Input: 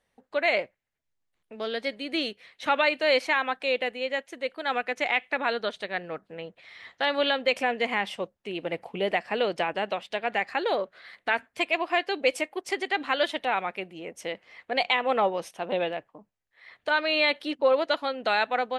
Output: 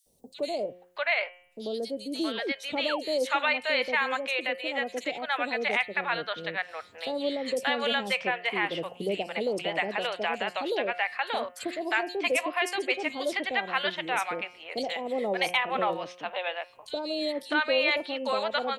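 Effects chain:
high-shelf EQ 7,600 Hz +9 dB
hum removal 178.4 Hz, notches 18
sound drawn into the spectrogram fall, 0:02.24–0:02.46, 240–2,000 Hz −32 dBFS
three-band delay without the direct sound highs, lows, mids 60/640 ms, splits 640/4,500 Hz
multiband upward and downward compressor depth 40%

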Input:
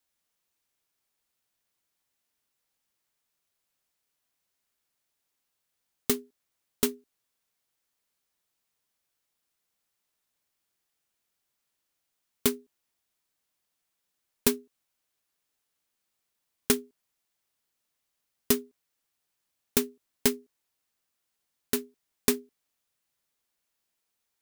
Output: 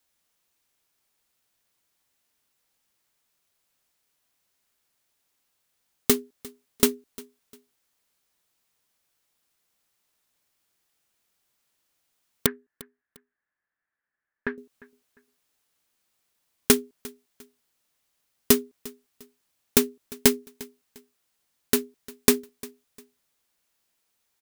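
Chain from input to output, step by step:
0:12.46–0:14.58: transistor ladder low-pass 1,800 Hz, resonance 80%
on a send: repeating echo 351 ms, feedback 30%, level −21.5 dB
on the sum: level +6 dB

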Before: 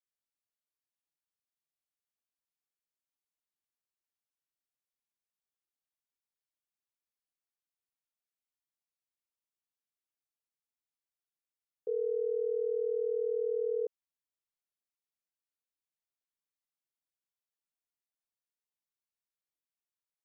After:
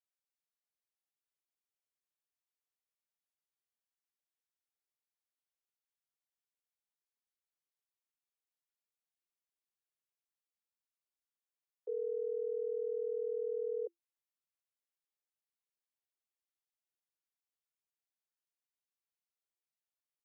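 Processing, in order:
Chebyshev high-pass filter 340 Hz, order 10
level −4.5 dB

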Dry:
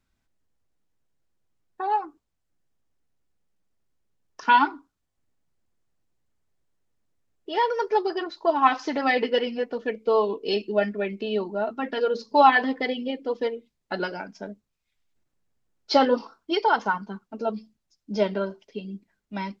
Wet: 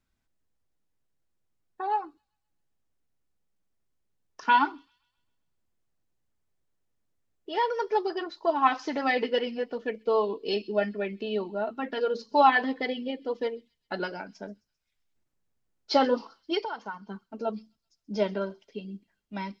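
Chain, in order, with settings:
0:16.62–0:17.09: downward compressor 2.5 to 1, threshold −34 dBFS, peak gain reduction 12.5 dB
on a send: delay with a high-pass on its return 131 ms, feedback 49%, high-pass 5,100 Hz, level −16.5 dB
on the sum: level −3.5 dB

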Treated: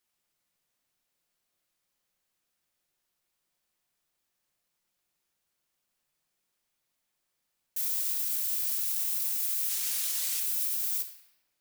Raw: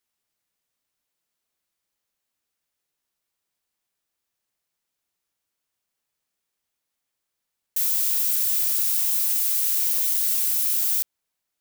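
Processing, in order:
0:09.69–0:10.40: meter weighting curve A
brickwall limiter −21.5 dBFS, peak gain reduction 11.5 dB
rectangular room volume 870 cubic metres, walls mixed, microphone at 0.92 metres

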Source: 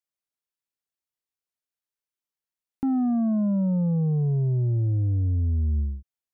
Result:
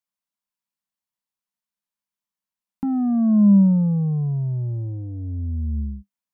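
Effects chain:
thirty-one-band graphic EQ 100 Hz −9 dB, 200 Hz +12 dB, 400 Hz −12 dB, 1,000 Hz +7 dB

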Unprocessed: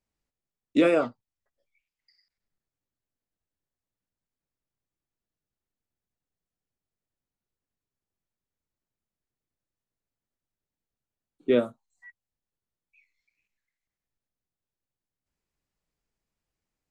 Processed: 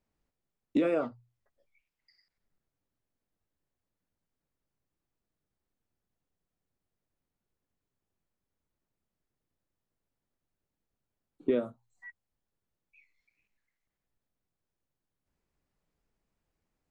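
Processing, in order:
high-shelf EQ 2,300 Hz −9.5 dB
mains-hum notches 60/120 Hz
downward compressor 4 to 1, threshold −32 dBFS, peak gain reduction 13 dB
level +5.5 dB

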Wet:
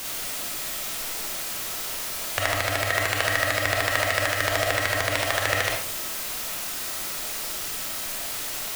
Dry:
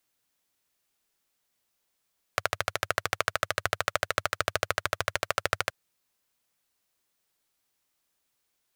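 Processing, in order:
converter with a step at zero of −28.5 dBFS
formants moved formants +4 semitones
comb and all-pass reverb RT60 0.51 s, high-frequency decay 0.65×, pre-delay 5 ms, DRR −2.5 dB

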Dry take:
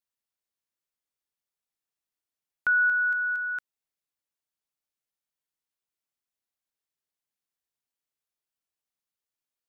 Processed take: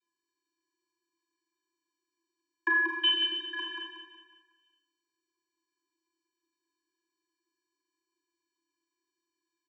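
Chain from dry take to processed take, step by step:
0:03.03–0:03.53: ring modulation 1,500 Hz
repeating echo 184 ms, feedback 43%, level −3 dB
channel vocoder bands 32, square 338 Hz
four-comb reverb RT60 0.73 s, combs from 27 ms, DRR −1 dB

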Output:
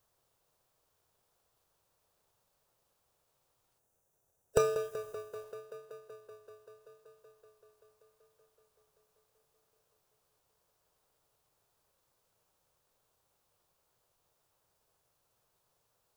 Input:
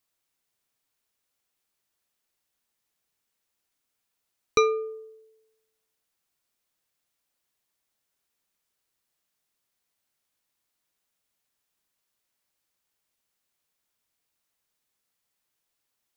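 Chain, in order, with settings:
gain on a spectral selection 0:03.79–0:05.33, 410–4,200 Hz −13 dB
formants moved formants +5 semitones
tape delay 191 ms, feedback 87%, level −13 dB, low-pass 4,400 Hz
in parallel at −6 dB: decimation without filtering 41×
on the sum: graphic EQ with 10 bands 125 Hz +4 dB, 250 Hz −11 dB, 500 Hz +5 dB, 1,000 Hz +9 dB, 2,000 Hz −5 dB
level +1.5 dB

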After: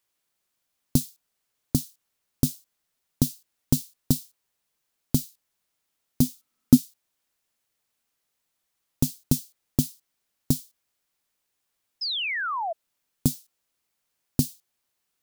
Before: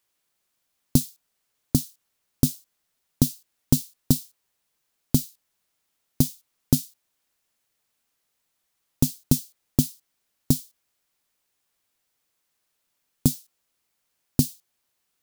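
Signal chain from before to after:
0:06.21–0:06.76: hollow resonant body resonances 240/1,300 Hz, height 10 dB → 13 dB
0:12.01–0:12.73: sound drawn into the spectrogram fall 630–5,300 Hz −26 dBFS
level −2.5 dB

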